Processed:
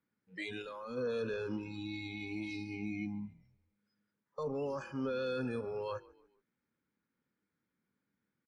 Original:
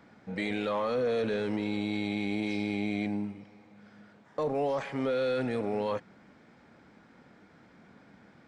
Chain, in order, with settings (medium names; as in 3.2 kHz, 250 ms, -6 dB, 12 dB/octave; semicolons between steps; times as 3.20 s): rattle on loud lows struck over -39 dBFS, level -45 dBFS; spectral noise reduction 24 dB; frequency-shifting echo 143 ms, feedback 42%, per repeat -40 Hz, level -22 dB; time-frequency box 0.62–0.97 s, 380–6100 Hz -7 dB; peaking EQ 700 Hz -14 dB 0.47 oct; trim -4 dB